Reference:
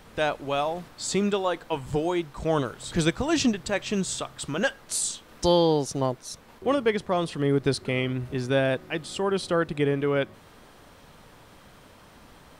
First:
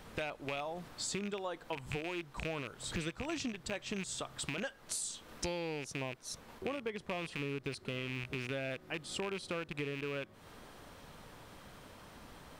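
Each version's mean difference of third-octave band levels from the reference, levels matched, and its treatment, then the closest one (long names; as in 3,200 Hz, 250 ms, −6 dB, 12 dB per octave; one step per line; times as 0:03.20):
6.5 dB: loose part that buzzes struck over −33 dBFS, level −17 dBFS
downward compressor 6 to 1, threshold −34 dBFS, peak gain reduction 17 dB
level −2.5 dB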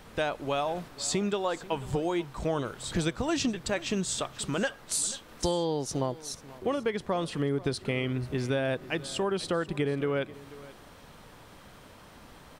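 3.5 dB: downward compressor, threshold −25 dBFS, peak gain reduction 9.5 dB
single-tap delay 488 ms −19 dB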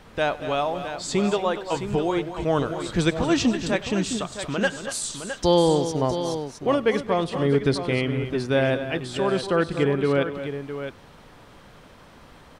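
4.5 dB: high-shelf EQ 8,400 Hz −10 dB
multi-tap delay 98/217/235/662 ms −20/−18.5/−11.5/−9.5 dB
level +2 dB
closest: second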